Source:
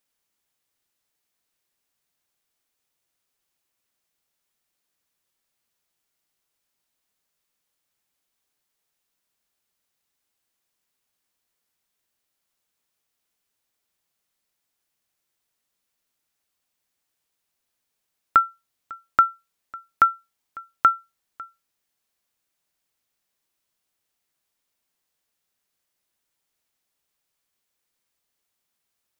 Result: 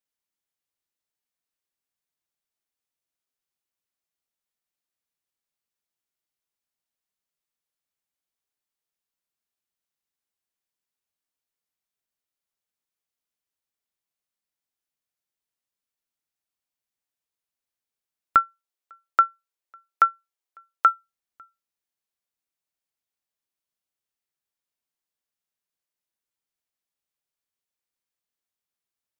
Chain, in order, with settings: 18.36–20.86 elliptic high-pass 320 Hz; upward expander 1.5:1, over -35 dBFS

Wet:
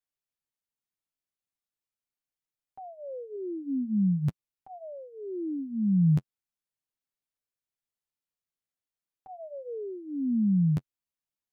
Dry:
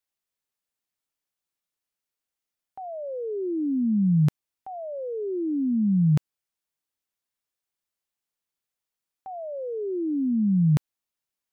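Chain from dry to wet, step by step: low shelf 260 Hz +7 dB; flange 0.41 Hz, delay 6.3 ms, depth 5.5 ms, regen -18%; 3.36–5.59 bell 410 Hz -2.5 dB 0.82 oct; gain -5 dB

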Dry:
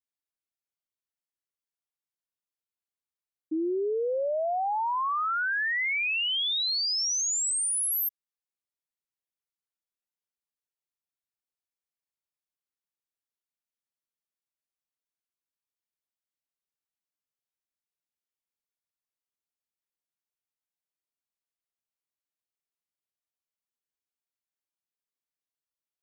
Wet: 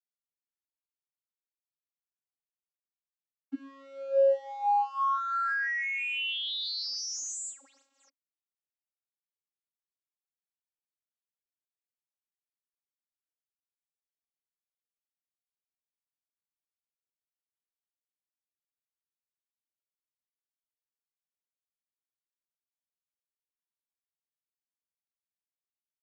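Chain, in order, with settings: G.711 law mismatch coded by A; tone controls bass -12 dB, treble 0 dB; vocoder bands 32, saw 273 Hz

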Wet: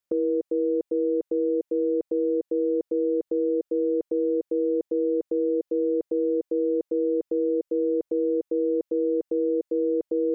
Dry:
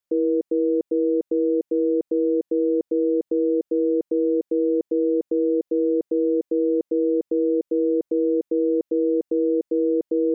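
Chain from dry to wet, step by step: dynamic EQ 210 Hz, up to -7 dB, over -36 dBFS, Q 0.78

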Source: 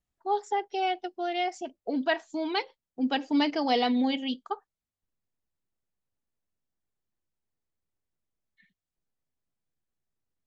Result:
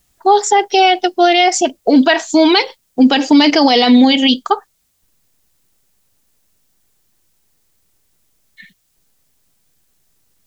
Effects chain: high shelf 3400 Hz +11 dB; maximiser +22.5 dB; gain -1 dB

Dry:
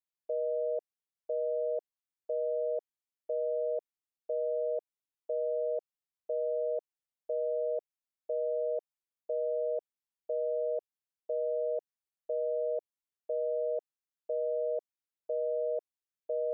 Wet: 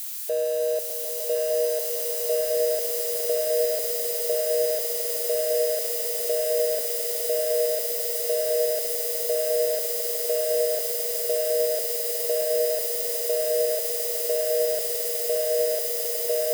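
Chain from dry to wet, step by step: switching spikes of -33.5 dBFS; swelling echo 0.151 s, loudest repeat 8, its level -6 dB; gain +7.5 dB

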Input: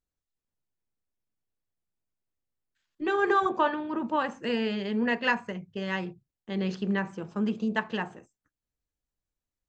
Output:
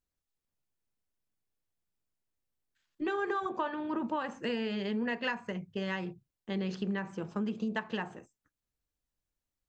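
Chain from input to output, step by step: compressor 6:1, threshold -30 dBFS, peak gain reduction 10.5 dB

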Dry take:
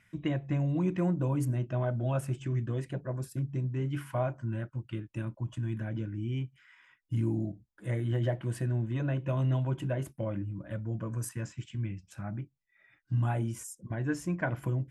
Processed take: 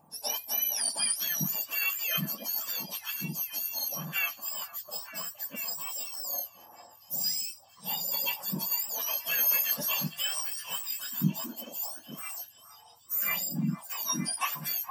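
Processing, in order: spectrum mirrored in octaves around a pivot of 1300 Hz; delay with a stepping band-pass 0.462 s, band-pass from 930 Hz, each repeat 0.7 oct, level -7 dB; 9.31–10.82 sample leveller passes 1; gain +5 dB

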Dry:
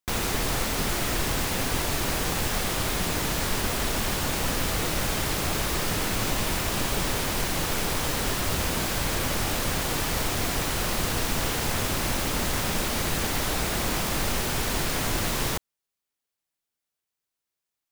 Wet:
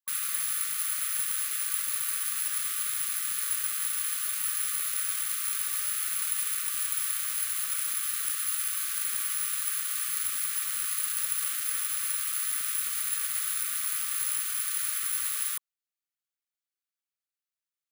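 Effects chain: careless resampling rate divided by 4×, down filtered, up zero stuff; brick-wall FIR high-pass 1100 Hz; gain -8.5 dB

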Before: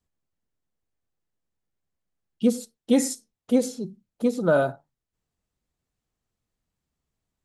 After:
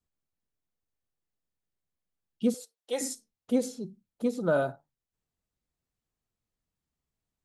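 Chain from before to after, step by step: 2.54–3.01 HPF 460 Hz 24 dB/oct; gain -5.5 dB

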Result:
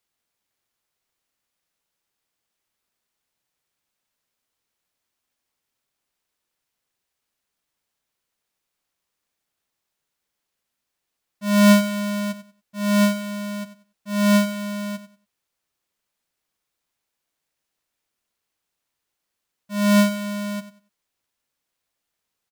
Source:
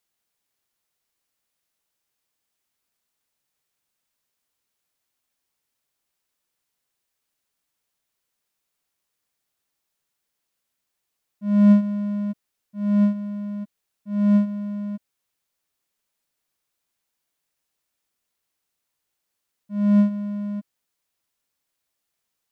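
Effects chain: half-waves squared off; feedback echo 94 ms, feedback 22%, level -13.5 dB; gain -4 dB

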